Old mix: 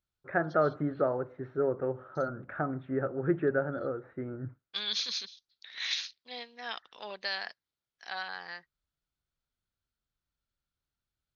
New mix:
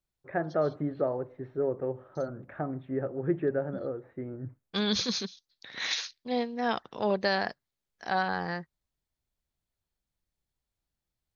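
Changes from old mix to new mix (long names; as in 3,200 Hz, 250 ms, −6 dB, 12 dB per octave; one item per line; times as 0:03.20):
first voice: add parametric band 1,400 Hz −11.5 dB 0.43 octaves
second voice: remove resonant band-pass 3,300 Hz, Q 1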